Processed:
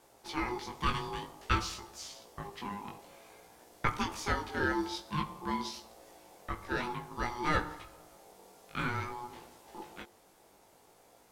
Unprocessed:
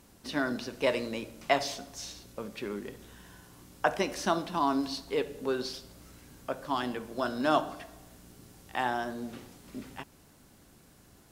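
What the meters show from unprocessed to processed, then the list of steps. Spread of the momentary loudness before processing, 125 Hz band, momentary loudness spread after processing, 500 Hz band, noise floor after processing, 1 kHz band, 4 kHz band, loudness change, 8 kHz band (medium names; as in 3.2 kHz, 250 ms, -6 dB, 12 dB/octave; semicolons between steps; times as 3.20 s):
18 LU, +5.0 dB, 20 LU, -9.5 dB, -63 dBFS, -3.0 dB, -3.5 dB, -3.5 dB, -3.0 dB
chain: de-hum 51.28 Hz, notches 7; ring modulator 610 Hz; chorus 0.53 Hz, delay 17 ms, depth 3.9 ms; trim +2.5 dB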